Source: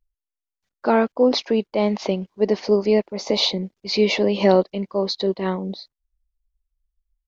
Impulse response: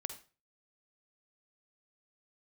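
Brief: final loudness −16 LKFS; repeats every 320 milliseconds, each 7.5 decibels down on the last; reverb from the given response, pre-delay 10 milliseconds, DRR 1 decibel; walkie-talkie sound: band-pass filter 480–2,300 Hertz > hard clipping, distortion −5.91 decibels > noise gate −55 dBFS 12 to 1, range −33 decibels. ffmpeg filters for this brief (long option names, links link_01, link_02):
-filter_complex "[0:a]aecho=1:1:320|640|960|1280|1600:0.422|0.177|0.0744|0.0312|0.0131,asplit=2[link_01][link_02];[1:a]atrim=start_sample=2205,adelay=10[link_03];[link_02][link_03]afir=irnorm=-1:irlink=0,volume=0.5dB[link_04];[link_01][link_04]amix=inputs=2:normalize=0,highpass=480,lowpass=2300,asoftclip=type=hard:threshold=-21.5dB,agate=range=-33dB:threshold=-55dB:ratio=12,volume=10.5dB"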